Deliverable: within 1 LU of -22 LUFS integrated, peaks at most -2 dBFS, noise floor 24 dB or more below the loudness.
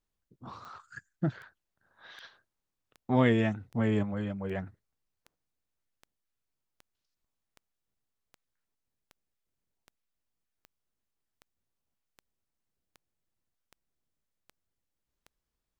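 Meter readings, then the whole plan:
clicks found 20; loudness -30.0 LUFS; peak level -13.5 dBFS; loudness target -22.0 LUFS
-> de-click; trim +8 dB

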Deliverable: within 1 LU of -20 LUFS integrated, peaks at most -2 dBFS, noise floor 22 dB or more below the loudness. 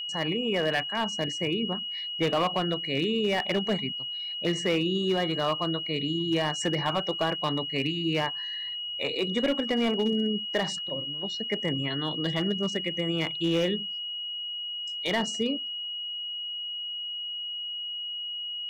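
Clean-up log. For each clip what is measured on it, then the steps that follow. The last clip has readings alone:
clipped samples 0.7%; clipping level -19.0 dBFS; steady tone 2.9 kHz; tone level -32 dBFS; loudness -28.5 LUFS; peak level -19.0 dBFS; loudness target -20.0 LUFS
-> clip repair -19 dBFS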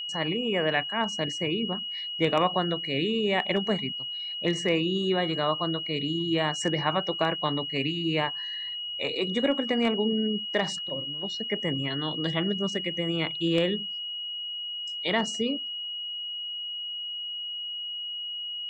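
clipped samples 0.0%; steady tone 2.9 kHz; tone level -32 dBFS
-> band-stop 2.9 kHz, Q 30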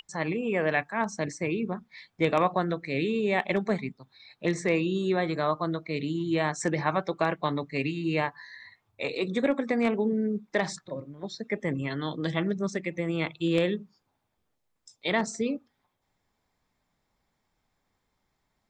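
steady tone not found; loudness -29.0 LUFS; peak level -9.5 dBFS; loudness target -20.0 LUFS
-> trim +9 dB; peak limiter -2 dBFS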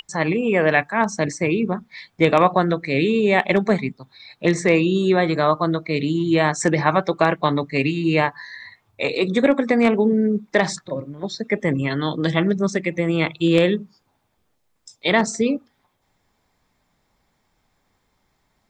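loudness -20.0 LUFS; peak level -2.0 dBFS; noise floor -69 dBFS

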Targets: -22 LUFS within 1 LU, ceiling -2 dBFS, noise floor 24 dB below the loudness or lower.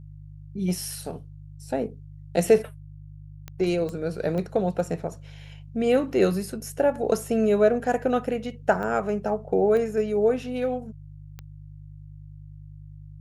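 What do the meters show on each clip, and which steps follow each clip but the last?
clicks found 6; hum 50 Hz; highest harmonic 150 Hz; hum level -41 dBFS; loudness -25.0 LUFS; peak level -5.5 dBFS; loudness target -22.0 LUFS
-> de-click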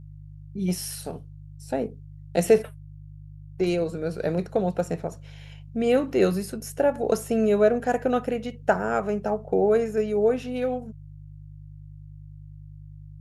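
clicks found 0; hum 50 Hz; highest harmonic 150 Hz; hum level -41 dBFS
-> de-hum 50 Hz, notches 3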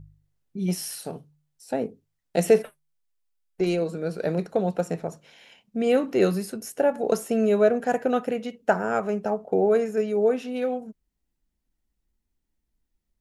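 hum not found; loudness -25.0 LUFS; peak level -5.5 dBFS; loudness target -22.0 LUFS
-> trim +3 dB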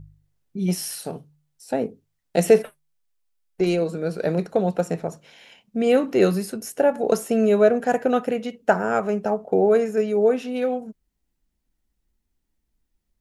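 loudness -22.0 LUFS; peak level -2.5 dBFS; noise floor -76 dBFS

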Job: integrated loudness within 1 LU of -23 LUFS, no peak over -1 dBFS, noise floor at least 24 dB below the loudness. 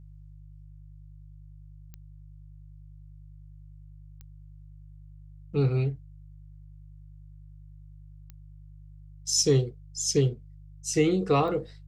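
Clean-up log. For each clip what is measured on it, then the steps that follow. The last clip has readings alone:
clicks found 4; hum 50 Hz; highest harmonic 150 Hz; hum level -45 dBFS; loudness -26.5 LUFS; peak level -11.0 dBFS; loudness target -23.0 LUFS
-> de-click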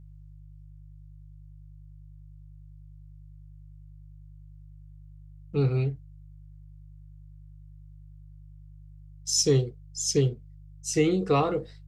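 clicks found 0; hum 50 Hz; highest harmonic 150 Hz; hum level -45 dBFS
-> de-hum 50 Hz, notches 3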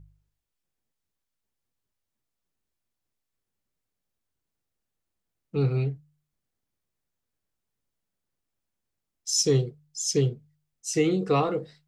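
hum not found; loudness -26.0 LUFS; peak level -11.5 dBFS; loudness target -23.0 LUFS
-> trim +3 dB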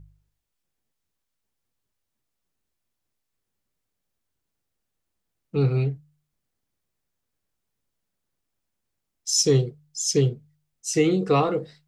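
loudness -23.0 LUFS; peak level -8.5 dBFS; noise floor -81 dBFS

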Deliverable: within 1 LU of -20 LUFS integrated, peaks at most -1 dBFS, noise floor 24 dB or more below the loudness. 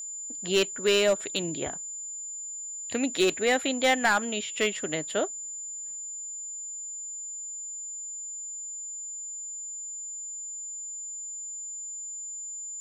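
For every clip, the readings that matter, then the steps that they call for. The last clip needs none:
clipped samples 0.3%; clipping level -16.5 dBFS; steady tone 7.1 kHz; tone level -35 dBFS; loudness -30.0 LUFS; peak level -16.5 dBFS; loudness target -20.0 LUFS
-> clip repair -16.5 dBFS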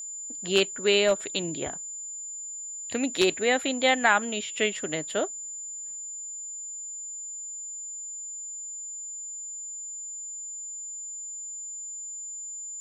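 clipped samples 0.0%; steady tone 7.1 kHz; tone level -35 dBFS
-> band-stop 7.1 kHz, Q 30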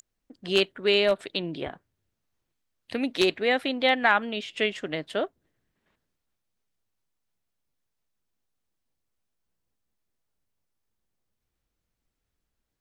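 steady tone not found; loudness -25.5 LUFS; peak level -7.0 dBFS; loudness target -20.0 LUFS
-> trim +5.5 dB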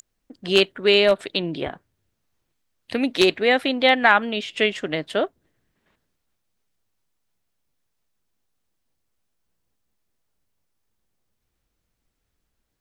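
loudness -20.0 LUFS; peak level -1.5 dBFS; noise floor -76 dBFS

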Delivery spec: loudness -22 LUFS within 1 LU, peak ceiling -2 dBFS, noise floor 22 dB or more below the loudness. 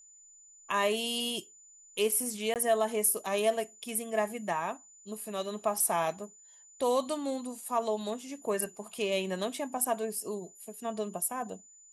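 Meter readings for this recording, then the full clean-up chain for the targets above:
dropouts 1; longest dropout 18 ms; steady tone 7 kHz; tone level -54 dBFS; loudness -32.0 LUFS; peak level -14.5 dBFS; loudness target -22.0 LUFS
-> interpolate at 2.54 s, 18 ms; band-stop 7 kHz, Q 30; trim +10 dB

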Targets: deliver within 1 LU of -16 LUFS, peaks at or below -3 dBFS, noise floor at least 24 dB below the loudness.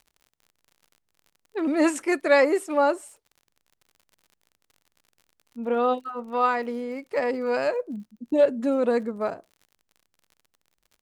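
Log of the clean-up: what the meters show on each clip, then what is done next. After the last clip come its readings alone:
tick rate 50 per s; loudness -24.5 LUFS; peak level -8.5 dBFS; loudness target -16.0 LUFS
-> de-click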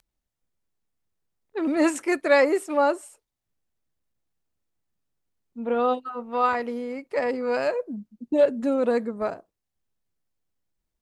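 tick rate 0.18 per s; loudness -24.5 LUFS; peak level -8.5 dBFS; loudness target -16.0 LUFS
-> trim +8.5 dB; peak limiter -3 dBFS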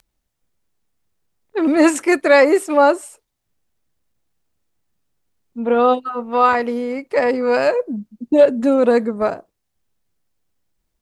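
loudness -16.5 LUFS; peak level -3.0 dBFS; noise floor -75 dBFS

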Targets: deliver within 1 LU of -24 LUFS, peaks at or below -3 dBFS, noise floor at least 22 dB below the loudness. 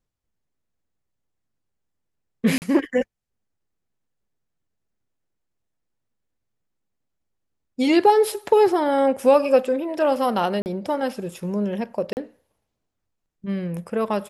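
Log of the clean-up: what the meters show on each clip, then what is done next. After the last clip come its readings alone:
dropouts 3; longest dropout 39 ms; loudness -21.5 LUFS; peak level -5.0 dBFS; loudness target -24.0 LUFS
-> interpolate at 2.58/10.62/12.13 s, 39 ms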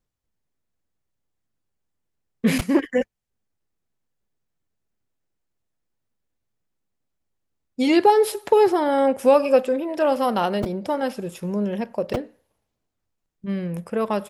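dropouts 0; loudness -21.5 LUFS; peak level -5.0 dBFS; loudness target -24.0 LUFS
-> trim -2.5 dB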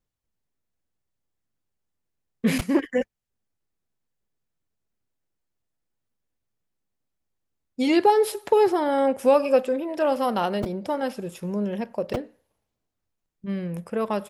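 loudness -24.0 LUFS; peak level -7.5 dBFS; noise floor -81 dBFS

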